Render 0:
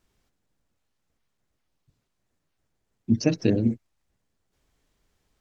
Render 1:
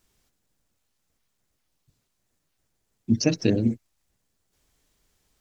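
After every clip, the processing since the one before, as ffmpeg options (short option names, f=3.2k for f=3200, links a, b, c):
-af "highshelf=f=4.2k:g=9.5"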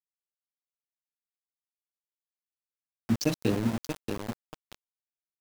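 -af "aecho=1:1:631|1262|1893|2524:0.473|0.166|0.058|0.0203,aeval=exprs='val(0)*gte(abs(val(0)),0.0562)':c=same,volume=-5dB"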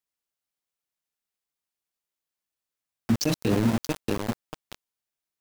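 -af "alimiter=limit=-20dB:level=0:latency=1:release=24,volume=6.5dB"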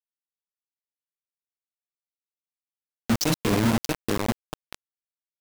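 -af "acrusher=bits=3:mix=0:aa=0.000001"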